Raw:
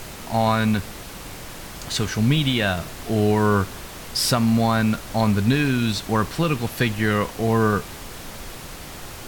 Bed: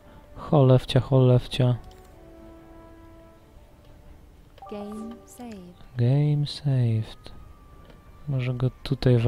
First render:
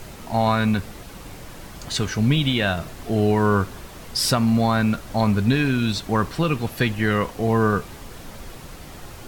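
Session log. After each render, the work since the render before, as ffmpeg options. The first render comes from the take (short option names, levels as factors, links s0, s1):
-af "afftdn=nr=6:nf=-37"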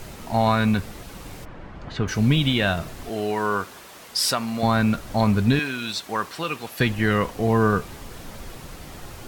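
-filter_complex "[0:a]asplit=3[s0][s1][s2];[s0]afade=t=out:st=1.44:d=0.02[s3];[s1]lowpass=2000,afade=t=in:st=1.44:d=0.02,afade=t=out:st=2.07:d=0.02[s4];[s2]afade=t=in:st=2.07:d=0.02[s5];[s3][s4][s5]amix=inputs=3:normalize=0,asettb=1/sr,asplit=3[s6][s7][s8];[s6]atrim=end=3.094[s9];[s7]atrim=start=3.09:end=4.63,asetpts=PTS-STARTPTS,afade=t=in:d=0.004:c=qsin,afade=t=out:st=1.536:d=0.004:c=qsin,highpass=f=630:p=1[s10];[s8]atrim=start=4.626[s11];[s9][s10]acrossfade=d=0.004:c1=hsin:c2=qsin[s12];[s12][s11]acrossfade=d=0.004:c1=qsin:c2=hsin,asettb=1/sr,asplit=3[s13][s14][s15];[s13]atrim=end=5.594[s16];[s14]atrim=start=5.59:end=6.8,asetpts=PTS-STARTPTS,afade=t=in:d=0.004:c=qsin,afade=t=out:st=1.206:d=0.004:c=qsin,highpass=f=800:p=1[s17];[s15]atrim=start=6.796[s18];[s16][s17]acrossfade=d=0.004:c1=hsin:c2=qsin[s19];[s19][s18]acrossfade=d=0.004:c1=qsin:c2=hsin"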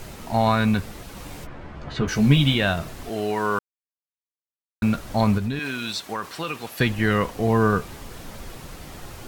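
-filter_complex "[0:a]asettb=1/sr,asplit=3[s0][s1][s2];[s0]atrim=end=1.154[s3];[s1]atrim=start=1.15:end=2.55,asetpts=PTS-STARTPTS,afade=t=in:d=0.004:c=qsin,afade=t=out:st=1.396:d=0.004:c=qsin,asplit=2[s4][s5];[s5]adelay=14,volume=0.631[s6];[s4][s6]amix=inputs=2:normalize=0,atrim=end_sample=61740[s7];[s2]atrim=start=2.546[s8];[s3][s7]acrossfade=d=0.004:c1=hsin:c2=qsin[s9];[s9][s8]acrossfade=d=0.004:c1=qsin:c2=hsin,asplit=3[s10][s11][s12];[s10]afade=t=out:st=5.37:d=0.02[s13];[s11]acompressor=threshold=0.0708:ratio=5:attack=3.2:release=140:knee=1:detection=peak,afade=t=in:st=5.37:d=0.02,afade=t=out:st=6.65:d=0.02[s14];[s12]afade=t=in:st=6.65:d=0.02[s15];[s13][s14][s15]amix=inputs=3:normalize=0,asplit=3[s16][s17][s18];[s16]atrim=end=3.59,asetpts=PTS-STARTPTS,afade=t=out:st=3.586:d=0.004:c=hsin[s19];[s17]atrim=start=3.59:end=4.82,asetpts=PTS-STARTPTS,volume=0[s20];[s18]atrim=start=4.82,asetpts=PTS-STARTPTS,afade=t=in:d=0.004:c=hsin[s21];[s19][s20][s21]concat=n=3:v=0:a=1"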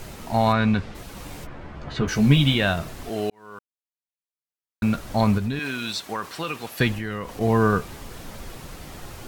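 -filter_complex "[0:a]asplit=3[s0][s1][s2];[s0]afade=t=out:st=0.52:d=0.02[s3];[s1]lowpass=4400,afade=t=in:st=0.52:d=0.02,afade=t=out:st=0.94:d=0.02[s4];[s2]afade=t=in:st=0.94:d=0.02[s5];[s3][s4][s5]amix=inputs=3:normalize=0,asettb=1/sr,asplit=3[s6][s7][s8];[s6]atrim=end=6.984[s9];[s7]atrim=start=6.98:end=7.41,asetpts=PTS-STARTPTS,afade=t=in:d=0.004:c=qsin,afade=t=out:st=0.426:d=0.004:c=qsin,acompressor=threshold=0.0355:ratio=3:attack=3.2:release=140:knee=1:detection=peak[s10];[s8]atrim=start=7.406[s11];[s9][s10]acrossfade=d=0.004:c1=hsin:c2=qsin[s12];[s12][s11]acrossfade=d=0.004:c1=qsin:c2=hsin,asplit=2[s13][s14];[s13]atrim=end=3.3,asetpts=PTS-STARTPTS,afade=t=out:st=3.296:d=0.004:c=hsin[s15];[s14]atrim=start=3.3,asetpts=PTS-STARTPTS,afade=t=in:d=1.73[s16];[s15][s16]concat=n=2:v=0:a=1"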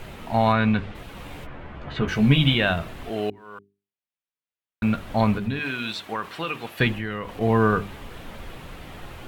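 -af "highshelf=f=4100:t=q:w=1.5:g=-8,bandreject=f=50:t=h:w=6,bandreject=f=100:t=h:w=6,bandreject=f=150:t=h:w=6,bandreject=f=200:t=h:w=6,bandreject=f=250:t=h:w=6,bandreject=f=300:t=h:w=6,bandreject=f=350:t=h:w=6,bandreject=f=400:t=h:w=6"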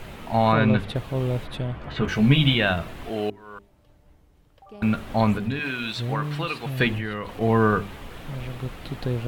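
-filter_complex "[1:a]volume=0.422[s0];[0:a][s0]amix=inputs=2:normalize=0"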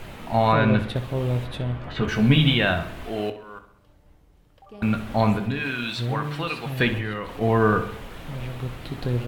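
-filter_complex "[0:a]asplit=2[s0][s1];[s1]adelay=25,volume=0.237[s2];[s0][s2]amix=inputs=2:normalize=0,asplit=2[s3][s4];[s4]adelay=65,lowpass=f=4200:p=1,volume=0.266,asplit=2[s5][s6];[s6]adelay=65,lowpass=f=4200:p=1,volume=0.54,asplit=2[s7][s8];[s8]adelay=65,lowpass=f=4200:p=1,volume=0.54,asplit=2[s9][s10];[s10]adelay=65,lowpass=f=4200:p=1,volume=0.54,asplit=2[s11][s12];[s12]adelay=65,lowpass=f=4200:p=1,volume=0.54,asplit=2[s13][s14];[s14]adelay=65,lowpass=f=4200:p=1,volume=0.54[s15];[s3][s5][s7][s9][s11][s13][s15]amix=inputs=7:normalize=0"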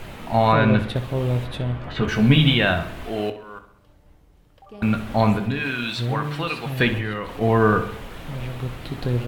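-af "volume=1.26"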